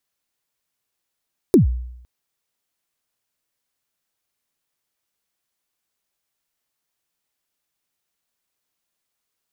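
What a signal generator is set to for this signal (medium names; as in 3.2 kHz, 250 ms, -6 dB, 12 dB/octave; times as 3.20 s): kick drum length 0.51 s, from 420 Hz, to 61 Hz, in 126 ms, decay 0.79 s, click on, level -6 dB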